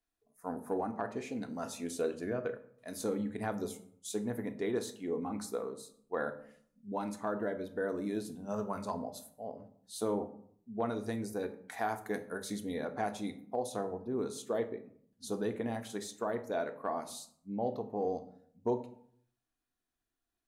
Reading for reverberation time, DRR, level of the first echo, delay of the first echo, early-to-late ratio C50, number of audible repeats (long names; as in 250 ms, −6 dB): 0.65 s, 7.0 dB, no echo audible, no echo audible, 14.0 dB, no echo audible